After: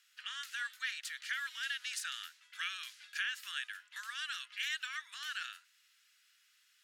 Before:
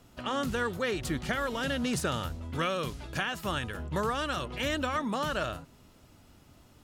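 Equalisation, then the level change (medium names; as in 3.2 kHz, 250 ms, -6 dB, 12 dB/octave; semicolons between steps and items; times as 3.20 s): elliptic high-pass 1.6 kHz, stop band 80 dB; treble shelf 8.2 kHz -5.5 dB; -1.5 dB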